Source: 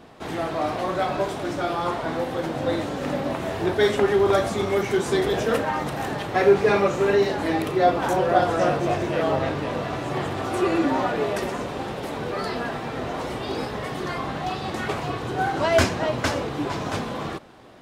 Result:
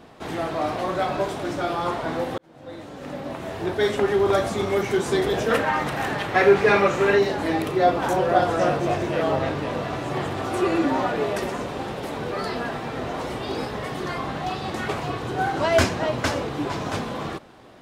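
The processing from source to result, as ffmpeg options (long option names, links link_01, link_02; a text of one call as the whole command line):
ffmpeg -i in.wav -filter_complex "[0:a]asettb=1/sr,asplit=3[link_01][link_02][link_03];[link_01]atrim=end=5.504[link_04];[link_02]atrim=start=5.5:end=7.19,asetpts=PTS-STARTPTS,afade=type=in:duration=0.004:curve=qsin,afade=type=out:start_time=1.686:duration=0.004:curve=qsin,equalizer=frequency=1900:width=0.76:gain=6[link_05];[link_03]atrim=start=7.186[link_06];[link_04][link_05]acrossfade=duration=0.004:curve1=hsin:curve2=qsin[link_07];[link_07][link_06]acrossfade=duration=0.004:curve1=qsin:curve2=hsin,asplit=2[link_08][link_09];[link_08]atrim=end=2.38,asetpts=PTS-STARTPTS,afade=type=out:start_time=2.376:duration=0.004:curve=hsin[link_10];[link_09]atrim=start=2.38,asetpts=PTS-STARTPTS,afade=type=in:duration=2.58:curve=qsin[link_11];[link_10][link_11]concat=n=2:v=0:a=1" out.wav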